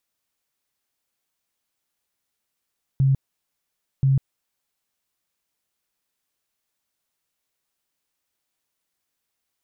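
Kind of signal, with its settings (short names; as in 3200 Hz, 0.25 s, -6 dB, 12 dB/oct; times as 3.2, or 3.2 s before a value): tone bursts 135 Hz, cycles 20, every 1.03 s, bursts 2, -14.5 dBFS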